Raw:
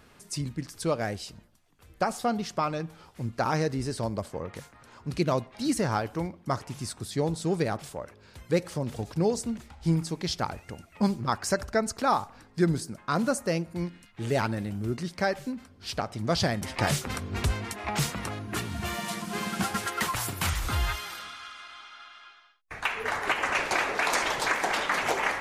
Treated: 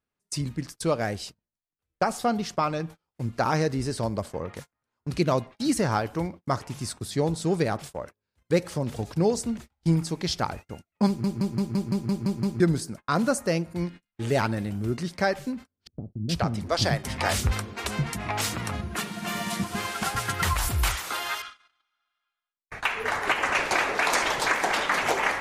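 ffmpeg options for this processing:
-filter_complex "[0:a]asettb=1/sr,asplit=3[s0][s1][s2];[s0]atrim=end=15.874[s3];[s1]atrim=start=15.87:end=21.42,asetpts=PTS-STARTPTS,afade=t=in:d=0.004:c=qsin,afade=t=out:st=5.546:d=0.004:c=qsin,acrossover=split=340[s4][s5];[s5]adelay=420[s6];[s4][s6]amix=inputs=2:normalize=0,atrim=end_sample=244755[s7];[s2]atrim=start=21.416[s8];[s3][s7]acrossfade=d=0.004:c1=hsin:c2=qsin[s9];[s9][s8]acrossfade=d=0.004:c1=qsin:c2=hsin,asplit=10[s10][s11][s12][s13][s14][s15][s16][s17][s18][s19];[s10]atrim=end=11.242[s20];[s11]atrim=start=11.068:end=11.242[s21];[s12]atrim=start=11.068:end=11.242[s22];[s13]atrim=start=11.068:end=11.242[s23];[s14]atrim=start=11.068:end=11.242[s24];[s15]atrim=start=11.068:end=11.242[s25];[s16]atrim=start=11.068:end=11.242[s26];[s17]atrim=start=11.068:end=11.242[s27];[s18]atrim=start=11.068:end=11.242[s28];[s19]atrim=start=12.598[s29];[s20][s21]acrossfade=d=0.004:c1=hsin:c2=hsin[s30];[s30][s22]acrossfade=d=0.004:c1=hsin:c2=hsin[s31];[s31][s23]acrossfade=d=0.004:c1=hsin:c2=hsin[s32];[s32][s24]acrossfade=d=0.004:c1=hsin:c2=hsin[s33];[s33][s25]acrossfade=d=0.004:c1=hsin:c2=hsin[s34];[s34][s26]acrossfade=d=0.004:c1=hsin:c2=hsin[s35];[s35][s27]acrossfade=d=0.004:c1=hsin:c2=hsin[s36];[s36][s28]acrossfade=d=0.004:c1=hsin:c2=hsin[s37];[s37][s29]acrossfade=d=0.004:c1=hsin:c2=hsin,agate=range=0.02:threshold=0.00891:ratio=16:detection=peak,volume=1.33"

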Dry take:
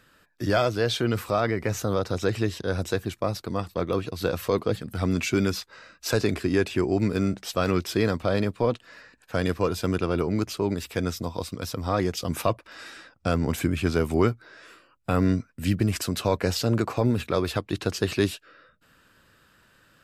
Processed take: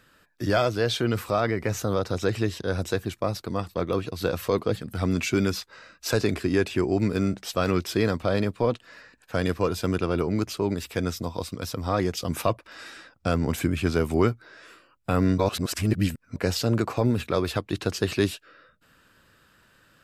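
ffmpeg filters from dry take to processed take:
-filter_complex "[0:a]asplit=3[s0][s1][s2];[s0]atrim=end=15.382[s3];[s1]atrim=start=15.378:end=16.362,asetpts=PTS-STARTPTS,areverse[s4];[s2]atrim=start=16.358[s5];[s3][s4]acrossfade=d=0.004:c1=hsin:c2=hsin[s6];[s6][s5]acrossfade=d=0.004:c1=hsin:c2=hsin"

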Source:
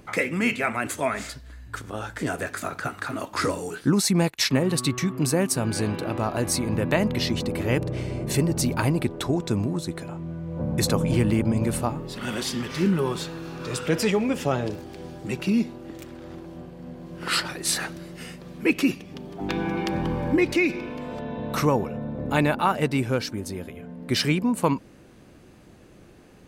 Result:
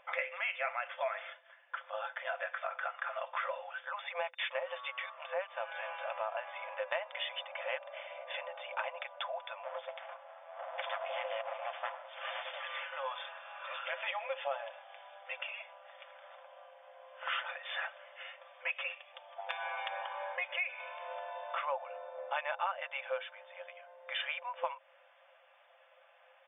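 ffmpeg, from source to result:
-filter_complex "[0:a]asettb=1/sr,asplit=3[s0][s1][s2];[s0]atrim=end=9.644[s3];[s1]atrim=start=9.64:end=12.59,asetpts=PTS-STARTPTS,afade=t=in:d=0.004:c=qsin,afade=t=out:st=2.946:d=0.004:c=qsin,aeval=exprs='abs(val(0))':c=same[s4];[s2]atrim=start=12.586[s5];[s3][s4]acrossfade=d=0.004:c1=hsin:c2=qsin[s6];[s6][s5]acrossfade=d=0.004:c1=qsin:c2=hsin,afftfilt=real='re*between(b*sr/4096,510,3600)':imag='im*between(b*sr/4096,510,3600)':win_size=4096:overlap=0.75,aecho=1:1:5.9:0.41,acompressor=threshold=0.0316:ratio=2.5,volume=0.596"

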